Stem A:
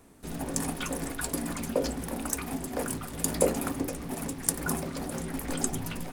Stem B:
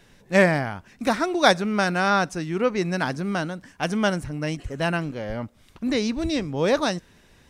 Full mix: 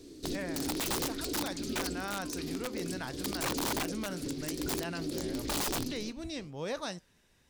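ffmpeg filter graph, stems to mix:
-filter_complex "[0:a]firequalizer=gain_entry='entry(130,0);entry(210,-5);entry(310,13);entry(790,-15);entry(4300,14);entry(9300,-4)':delay=0.05:min_phase=1,volume=1.5dB[a];[1:a]adynamicequalizer=threshold=0.0158:dfrequency=290:dqfactor=2.6:tfrequency=290:tqfactor=2.6:attack=5:release=100:ratio=0.375:range=1.5:mode=cutabove:tftype=bell,flanger=delay=4.8:depth=6.7:regen=-88:speed=0.59:shape=sinusoidal,highshelf=f=4.1k:g=7,volume=-9.5dB,afade=t=in:st=1.74:d=0.41:silence=0.421697,asplit=2[b][c];[c]apad=whole_len=274487[d];[a][d]sidechaincompress=threshold=-47dB:ratio=4:attack=37:release=312[e];[e][b]amix=inputs=2:normalize=0,aeval=exprs='(mod(15*val(0)+1,2)-1)/15':c=same,alimiter=level_in=3dB:limit=-24dB:level=0:latency=1:release=18,volume=-3dB"

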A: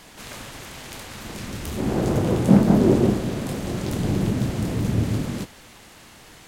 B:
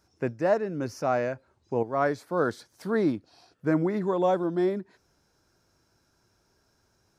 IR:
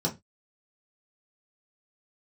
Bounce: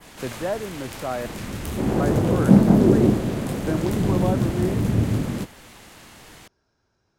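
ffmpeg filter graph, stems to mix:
-filter_complex "[0:a]adynamicequalizer=threshold=0.00316:dfrequency=5000:dqfactor=0.72:tfrequency=5000:tqfactor=0.72:attack=5:release=100:ratio=0.375:range=2:mode=cutabove:tftype=bell,volume=1.5dB[a];[1:a]lowpass=4.8k,volume=-2dB,asplit=3[b][c][d];[b]atrim=end=1.26,asetpts=PTS-STARTPTS,afade=t=out:st=1.256:d=0.004:c=hsin[e];[c]atrim=start=1.26:end=2,asetpts=PTS-STARTPTS,volume=0[f];[d]atrim=start=2,asetpts=PTS-STARTPTS,afade=t=in:d=0.004:c=hsin[g];[e][f][g]concat=n=3:v=0:a=1[h];[a][h]amix=inputs=2:normalize=0,acrossover=split=410|3000[i][j][k];[j]acompressor=threshold=-23dB:ratio=6[l];[i][l][k]amix=inputs=3:normalize=0"

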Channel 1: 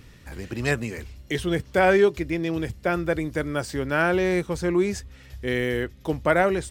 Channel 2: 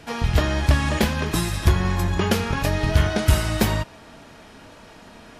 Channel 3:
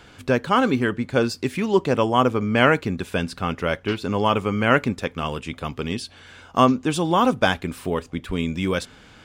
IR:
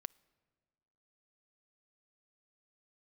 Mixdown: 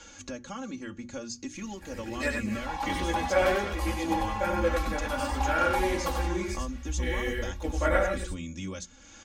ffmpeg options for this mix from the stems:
-filter_complex "[0:a]flanger=delay=15.5:depth=6.9:speed=1.3,asubboost=boost=10:cutoff=69,adelay=1550,volume=-1.5dB,asplit=2[a][b];[b]volume=-3.5dB[c];[1:a]aeval=exprs='val(0)*sin(2*PI*890*n/s)':c=same,adelay=2450,volume=-10.5dB,asplit=2[d][e];[e]volume=-5dB[f];[2:a]acompressor=threshold=-22dB:ratio=2.5,lowpass=f=6.5k:t=q:w=14,acrossover=split=150[g][h];[h]acompressor=threshold=-43dB:ratio=2[i];[g][i]amix=inputs=2:normalize=0,volume=-1.5dB[j];[c][f]amix=inputs=2:normalize=0,aecho=0:1:94:1[k];[a][d][j][k]amix=inputs=4:normalize=0,bandreject=f=60:t=h:w=6,bandreject=f=120:t=h:w=6,bandreject=f=180:t=h:w=6,bandreject=f=240:t=h:w=6,bandreject=f=300:t=h:w=6,bandreject=f=360:t=h:w=6,aecho=1:1:3.6:0.96,flanger=delay=2.1:depth=3.7:regen=71:speed=0.53:shape=sinusoidal"

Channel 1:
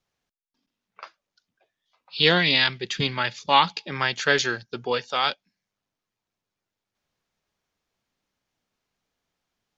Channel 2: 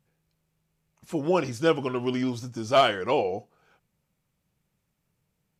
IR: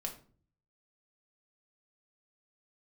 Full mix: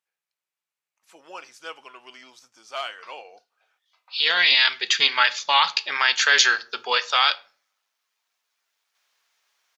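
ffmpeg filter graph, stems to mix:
-filter_complex "[0:a]alimiter=limit=-13.5dB:level=0:latency=1:release=40,dynaudnorm=f=210:g=11:m=14.5dB,adelay=2000,volume=-4.5dB,asplit=2[a][b];[b]volume=-6dB[c];[1:a]highshelf=f=9.4k:g=-5,volume=-6dB,asplit=2[d][e];[e]apad=whole_len=519139[f];[a][f]sidechaincompress=threshold=-48dB:ratio=8:attack=16:release=923[g];[2:a]atrim=start_sample=2205[h];[c][h]afir=irnorm=-1:irlink=0[i];[g][d][i]amix=inputs=3:normalize=0,highpass=1.1k"

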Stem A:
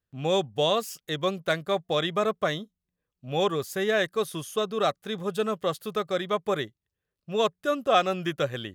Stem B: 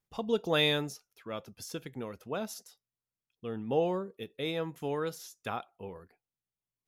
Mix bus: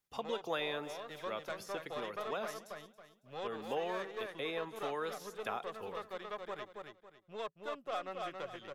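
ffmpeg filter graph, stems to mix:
-filter_complex "[0:a]highshelf=f=4.1k:g=-11,aeval=exprs='0.335*(cos(1*acos(clip(val(0)/0.335,-1,1)))-cos(1*PI/2))+0.0266*(cos(8*acos(clip(val(0)/0.335,-1,1)))-cos(8*PI/2))':c=same,volume=-13.5dB,asplit=2[a][b];[b]volume=-5dB[c];[1:a]volume=2dB,asplit=2[d][e];[e]volume=-24dB[f];[c][f]amix=inputs=2:normalize=0,aecho=0:1:276|552|828|1104:1|0.28|0.0784|0.022[g];[a][d][g]amix=inputs=3:normalize=0,lowshelf=f=310:g=-11,acrossover=split=300|840|2800[h][i][j][k];[h]acompressor=threshold=-54dB:ratio=4[l];[i]acompressor=threshold=-39dB:ratio=4[m];[j]acompressor=threshold=-40dB:ratio=4[n];[k]acompressor=threshold=-54dB:ratio=4[o];[l][m][n][o]amix=inputs=4:normalize=0"

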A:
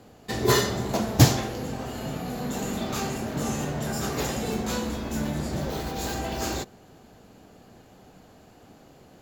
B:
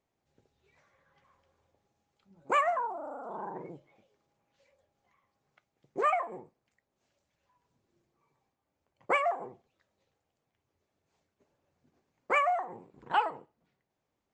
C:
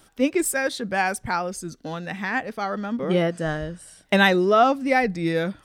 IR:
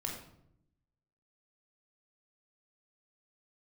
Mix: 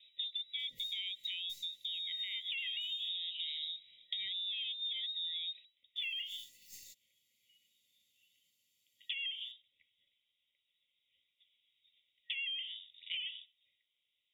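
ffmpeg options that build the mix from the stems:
-filter_complex "[0:a]aderivative,aecho=1:1:1.1:0.36,aeval=exprs='(tanh(20*val(0)+0.65)-tanh(0.65))/20':c=same,adelay=300,volume=-11dB,asplit=3[a][b][c];[a]atrim=end=3.1,asetpts=PTS-STARTPTS,afade=t=out:st=3.096:d=0.004:c=hsin[d];[b]atrim=start=3.1:end=5.96,asetpts=PTS-STARTPTS,volume=0[e];[c]atrim=start=5.96,asetpts=PTS-STARTPTS,afade=t=in:d=0.004:c=hsin[f];[d][e][f]concat=n=3:v=0:a=1[g];[1:a]lowshelf=f=390:g=-8,alimiter=limit=-22.5dB:level=0:latency=1:release=26,volume=3dB[h];[2:a]tiltshelf=f=1.1k:g=8.5,acontrast=84,volume=-17.5dB,asplit=2[i][j];[j]apad=whole_len=419629[k];[g][k]sidechaincompress=threshold=-43dB:ratio=3:attack=16:release=1470[l];[h][i]amix=inputs=2:normalize=0,lowpass=f=3.3k:t=q:w=0.5098,lowpass=f=3.3k:t=q:w=0.6013,lowpass=f=3.3k:t=q:w=0.9,lowpass=f=3.3k:t=q:w=2.563,afreqshift=-3900,acompressor=threshold=-30dB:ratio=6,volume=0dB[m];[l][m]amix=inputs=2:normalize=0,afftfilt=real='re*(1-between(b*sr/4096,590,1900))':imag='im*(1-between(b*sr/4096,590,1900))':win_size=4096:overlap=0.75,equalizer=f=100:t=o:w=0.67:g=6,equalizer=f=400:t=o:w=0.67:g=-10,equalizer=f=1k:t=o:w=0.67:g=11,acompressor=threshold=-38dB:ratio=4"

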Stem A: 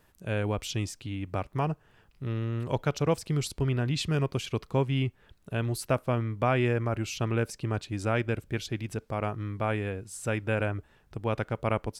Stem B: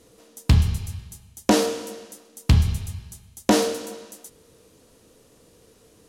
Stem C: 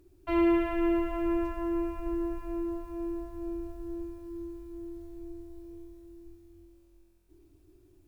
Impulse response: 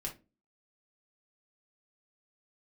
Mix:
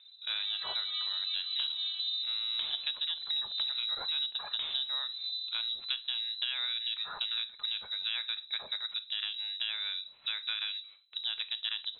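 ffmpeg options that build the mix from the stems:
-filter_complex "[0:a]bandreject=f=3.7k:w=20,agate=range=-12dB:threshold=-53dB:ratio=16:detection=peak,volume=-3.5dB,asplit=3[a][b][c];[b]volume=-6dB[d];[1:a]adelay=1100,volume=-14.5dB[e];[2:a]aphaser=in_gain=1:out_gain=1:delay=1.1:decay=0.49:speed=0.55:type=sinusoidal,volume=-4.5dB,asplit=2[f][g];[g]volume=-10dB[h];[c]apad=whole_len=356306[i];[f][i]sidechaincompress=threshold=-45dB:ratio=8:attack=16:release=123[j];[3:a]atrim=start_sample=2205[k];[d][h]amix=inputs=2:normalize=0[l];[l][k]afir=irnorm=-1:irlink=0[m];[a][e][j][m]amix=inputs=4:normalize=0,lowpass=f=3.4k:t=q:w=0.5098,lowpass=f=3.4k:t=q:w=0.6013,lowpass=f=3.4k:t=q:w=0.9,lowpass=f=3.4k:t=q:w=2.563,afreqshift=-4000,acompressor=threshold=-31dB:ratio=6"

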